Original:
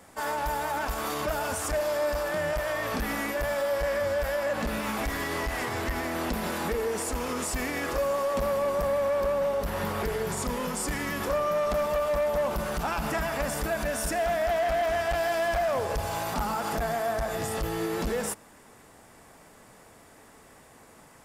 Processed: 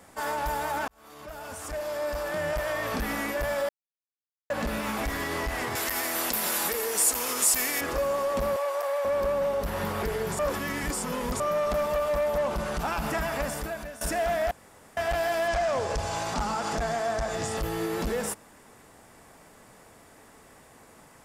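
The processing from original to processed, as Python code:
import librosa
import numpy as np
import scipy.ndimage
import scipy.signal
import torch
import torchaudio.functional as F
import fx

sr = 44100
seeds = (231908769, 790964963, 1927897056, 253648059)

y = fx.riaa(x, sr, side='recording', at=(5.75, 7.81))
y = fx.highpass(y, sr, hz=540.0, slope=24, at=(8.56, 9.05))
y = fx.lowpass(y, sr, hz=9800.0, slope=12, at=(12.38, 12.8))
y = fx.lowpass_res(y, sr, hz=6900.0, q=1.6, at=(15.48, 17.57))
y = fx.edit(y, sr, fx.fade_in_span(start_s=0.88, length_s=1.71),
    fx.silence(start_s=3.69, length_s=0.81),
    fx.reverse_span(start_s=10.39, length_s=1.01),
    fx.fade_out_to(start_s=13.38, length_s=0.63, floor_db=-16.5),
    fx.room_tone_fill(start_s=14.51, length_s=0.46), tone=tone)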